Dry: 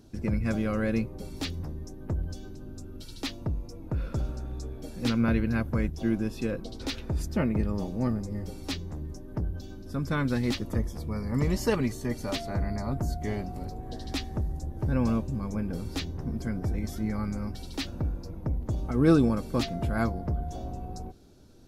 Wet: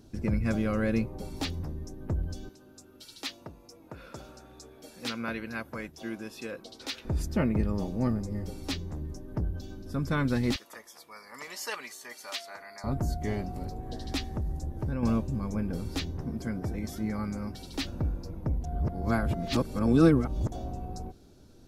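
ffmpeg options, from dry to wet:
ffmpeg -i in.wav -filter_complex "[0:a]asettb=1/sr,asplit=3[link_01][link_02][link_03];[link_01]atrim=end=1.014[link_04];[link_02]atrim=start=1.01:end=1.59,asetpts=PTS-STARTPTS,afade=type=in:duration=0.004:curve=qsin,afade=type=out:start_time=0.576:duration=0.004:curve=qsin,equalizer=frequency=820:width_type=o:width=0.77:gain=5.5[link_05];[link_03]atrim=start=1.586[link_06];[link_04][link_05]acrossfade=duration=0.004:curve1=hsin:curve2=qsin[link_07];[link_07][link_06]acrossfade=duration=0.004:curve1=qsin:curve2=hsin,asettb=1/sr,asplit=3[link_08][link_09][link_10];[link_08]atrim=end=2.494[link_11];[link_09]atrim=start=2.49:end=7.05,asetpts=PTS-STARTPTS,afade=type=in:duration=0.004:curve=qsin,afade=type=out:start_time=4.556:duration=0.004:curve=qsin,highpass=frequency=830:poles=1[link_12];[link_10]atrim=start=7.046[link_13];[link_11][link_12]acrossfade=duration=0.004:curve1=hsin:curve2=qsin[link_14];[link_14][link_13]acrossfade=duration=0.004:curve1=qsin:curve2=hsin,asettb=1/sr,asplit=3[link_15][link_16][link_17];[link_15]atrim=end=10.564[link_18];[link_16]atrim=start=10.56:end=12.84,asetpts=PTS-STARTPTS,afade=type=in:duration=0.004:curve=qsin,afade=type=out:start_time=2.276:duration=0.004:curve=qsin,highpass=1100[link_19];[link_17]atrim=start=12.836[link_20];[link_18][link_19]acrossfade=duration=0.004:curve1=hsin:curve2=qsin[link_21];[link_21][link_20]acrossfade=duration=0.004:curve1=qsin:curve2=hsin,asettb=1/sr,asplit=3[link_22][link_23][link_24];[link_22]atrim=end=14.304[link_25];[link_23]atrim=start=14.3:end=15.03,asetpts=PTS-STARTPTS,afade=type=in:duration=0.004:curve=qsin,afade=type=out:start_time=0.726:duration=0.004:curve=qsin,acompressor=threshold=-27dB:ratio=6:attack=3.2:release=140:knee=1:detection=peak[link_26];[link_24]atrim=start=15.026[link_27];[link_25][link_26]acrossfade=duration=0.004:curve1=hsin:curve2=qsin[link_28];[link_28][link_27]acrossfade=duration=0.004:curve1=qsin:curve2=hsin,asettb=1/sr,asplit=3[link_29][link_30][link_31];[link_29]atrim=end=16.234[link_32];[link_30]atrim=start=16.23:end=17.74,asetpts=PTS-STARTPTS,afade=type=in:duration=0.004:curve=qsin,afade=type=out:start_time=1.506:duration=0.004:curve=qsin,lowshelf=frequency=70:gain=-11.5[link_33];[link_31]atrim=start=17.736[link_34];[link_32][link_33]acrossfade=duration=0.004:curve1=hsin:curve2=qsin[link_35];[link_35][link_34]acrossfade=duration=0.004:curve1=qsin:curve2=hsin,asplit=3[link_36][link_37][link_38];[link_36]atrim=end=18.642[link_39];[link_37]atrim=start=18.638:end=20.522,asetpts=PTS-STARTPTS,areverse[link_40];[link_38]atrim=start=20.518[link_41];[link_39][link_40]acrossfade=duration=0.004:curve1=hsin:curve2=hsin[link_42];[link_42][link_41]acrossfade=duration=0.004:curve1=hsin:curve2=hsin" out.wav

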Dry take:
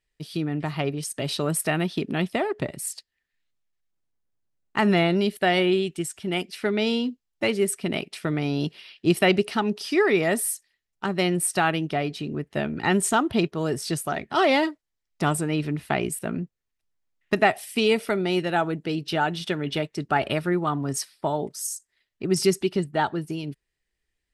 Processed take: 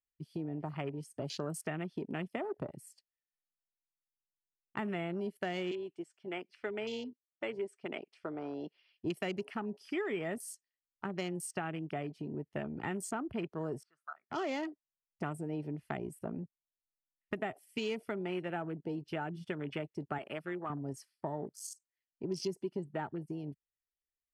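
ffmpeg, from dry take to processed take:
ffmpeg -i in.wav -filter_complex "[0:a]asettb=1/sr,asplit=3[link_01][link_02][link_03];[link_01]atrim=end=5.714[link_04];[link_02]atrim=start=5.71:end=8.94,asetpts=PTS-STARTPTS,afade=type=in:duration=0.004:curve=qsin,afade=type=out:start_time=3.226:duration=0.004:curve=qsin,highpass=410,lowpass=5100[link_05];[link_03]atrim=start=8.936[link_06];[link_04][link_05]acrossfade=duration=0.004:curve1=hsin:curve2=qsin[link_07];[link_07][link_06]acrossfade=duration=0.004:curve1=qsin:curve2=hsin,asettb=1/sr,asplit=3[link_08][link_09][link_10];[link_08]atrim=end=13.834[link_11];[link_09]atrim=start=13.83:end=14.3,asetpts=PTS-STARTPTS,afade=type=in:duration=0.004:curve=qsin,afade=type=out:start_time=0.466:duration=0.004:curve=qsin,bandpass=frequency=1300:width_type=q:width=5.9[link_12];[link_10]atrim=start=14.296[link_13];[link_11][link_12]acrossfade=duration=0.004:curve1=hsin:curve2=qsin[link_14];[link_14][link_13]acrossfade=duration=0.004:curve1=qsin:curve2=hsin,asettb=1/sr,asplit=3[link_15][link_16][link_17];[link_15]atrim=end=20.184[link_18];[link_16]atrim=start=20.18:end=20.7,asetpts=PTS-STARTPTS,afade=type=in:duration=0.004:curve=qsin,afade=type=out:start_time=0.516:duration=0.004:curve=qsin,highpass=frequency=630:poles=1[link_19];[link_17]atrim=start=20.696[link_20];[link_18][link_19]acrossfade=duration=0.004:curve1=hsin:curve2=qsin[link_21];[link_21][link_20]acrossfade=duration=0.004:curve1=qsin:curve2=hsin,afwtdn=0.0224,bandreject=frequency=3800:width=6.4,acrossover=split=410|7500[link_22][link_23][link_24];[link_22]acompressor=threshold=-32dB:ratio=4[link_25];[link_23]acompressor=threshold=-32dB:ratio=4[link_26];[link_24]acompressor=threshold=-47dB:ratio=4[link_27];[link_25][link_26][link_27]amix=inputs=3:normalize=0,volume=-7dB" out.wav

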